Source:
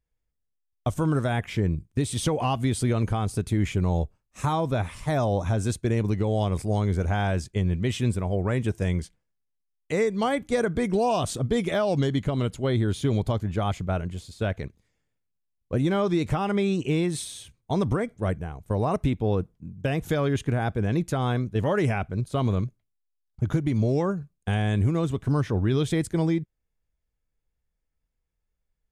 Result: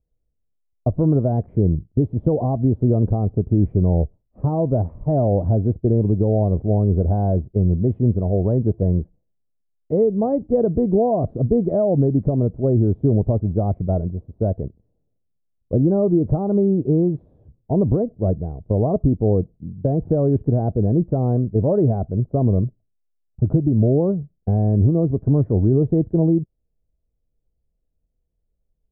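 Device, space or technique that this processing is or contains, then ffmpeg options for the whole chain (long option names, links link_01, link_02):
under water: -af "lowpass=frequency=610:width=0.5412,lowpass=frequency=610:width=1.3066,equalizer=frequency=660:width_type=o:width=0.22:gain=4,volume=7dB"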